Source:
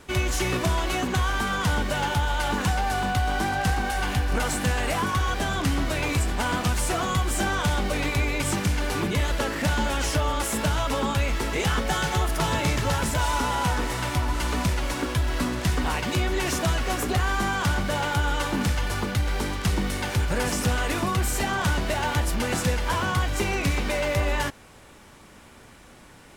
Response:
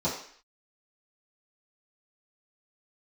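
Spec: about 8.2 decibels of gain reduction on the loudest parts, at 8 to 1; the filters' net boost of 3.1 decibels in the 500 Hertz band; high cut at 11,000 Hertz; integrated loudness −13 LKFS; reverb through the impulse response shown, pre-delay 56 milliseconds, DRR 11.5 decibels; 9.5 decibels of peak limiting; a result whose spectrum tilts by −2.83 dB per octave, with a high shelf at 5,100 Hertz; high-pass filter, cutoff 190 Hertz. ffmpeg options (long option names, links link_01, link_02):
-filter_complex "[0:a]highpass=190,lowpass=11000,equalizer=frequency=500:width_type=o:gain=4,highshelf=frequency=5100:gain=7.5,acompressor=threshold=-29dB:ratio=8,alimiter=level_in=2dB:limit=-24dB:level=0:latency=1,volume=-2dB,asplit=2[link_01][link_02];[1:a]atrim=start_sample=2205,adelay=56[link_03];[link_02][link_03]afir=irnorm=-1:irlink=0,volume=-21dB[link_04];[link_01][link_04]amix=inputs=2:normalize=0,volume=21dB"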